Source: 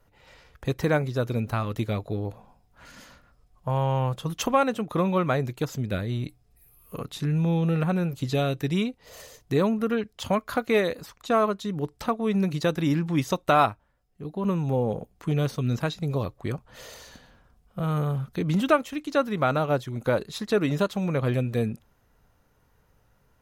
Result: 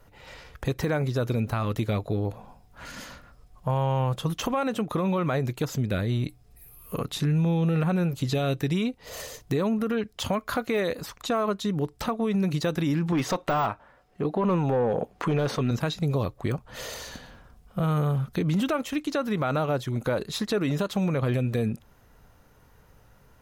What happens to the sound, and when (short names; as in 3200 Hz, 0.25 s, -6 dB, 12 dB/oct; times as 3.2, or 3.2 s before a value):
13.12–15.71 overdrive pedal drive 21 dB, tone 1300 Hz, clips at -8 dBFS
whole clip: de-esser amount 75%; limiter -20 dBFS; compressor 1.5:1, threshold -39 dBFS; gain +7.5 dB